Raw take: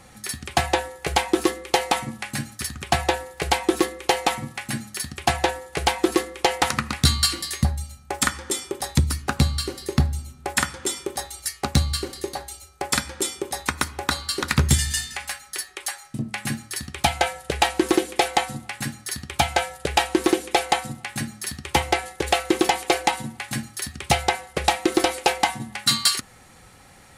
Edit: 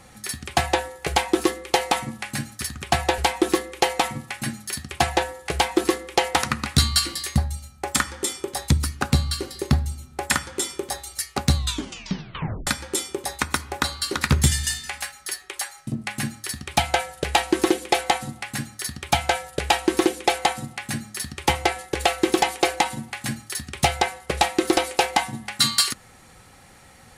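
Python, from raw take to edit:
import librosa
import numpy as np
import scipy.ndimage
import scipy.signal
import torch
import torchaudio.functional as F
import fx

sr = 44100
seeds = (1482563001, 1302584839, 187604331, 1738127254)

y = fx.edit(x, sr, fx.cut(start_s=3.18, length_s=0.27),
    fx.tape_stop(start_s=11.82, length_s=1.12), tone=tone)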